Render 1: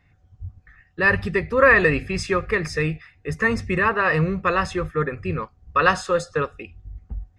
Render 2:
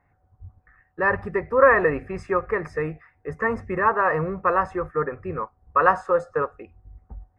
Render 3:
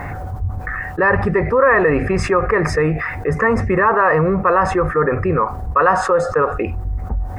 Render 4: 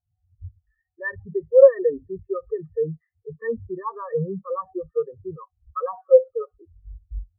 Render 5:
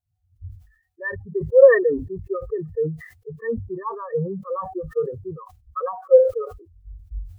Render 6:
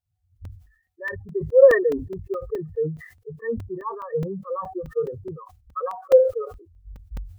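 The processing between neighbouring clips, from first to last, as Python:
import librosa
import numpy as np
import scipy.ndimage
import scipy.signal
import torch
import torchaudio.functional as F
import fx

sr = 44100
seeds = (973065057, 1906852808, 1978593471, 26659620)

y1 = fx.curve_eq(x, sr, hz=(170.0, 910.0, 2000.0, 3400.0, 7900.0), db=(0, 13, 1, -17, -10))
y1 = y1 * librosa.db_to_amplitude(-8.0)
y2 = fx.env_flatten(y1, sr, amount_pct=70)
y3 = fx.spectral_expand(y2, sr, expansion=4.0)
y4 = fx.sustainer(y3, sr, db_per_s=100.0)
y5 = fx.buffer_crackle(y4, sr, first_s=0.45, period_s=0.21, block=128, kind='zero')
y5 = y5 * librosa.db_to_amplitude(-1.5)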